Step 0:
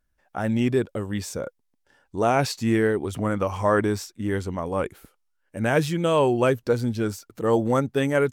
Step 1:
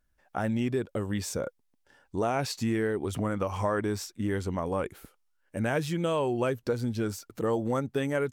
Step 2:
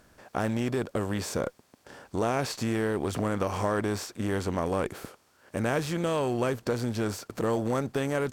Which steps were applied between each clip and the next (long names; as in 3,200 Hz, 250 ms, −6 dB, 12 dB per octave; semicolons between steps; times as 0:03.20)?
downward compressor 3 to 1, threshold −27 dBFS, peak gain reduction 9 dB
compressor on every frequency bin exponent 0.6; harmonic generator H 8 −33 dB, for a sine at −11.5 dBFS; level −2.5 dB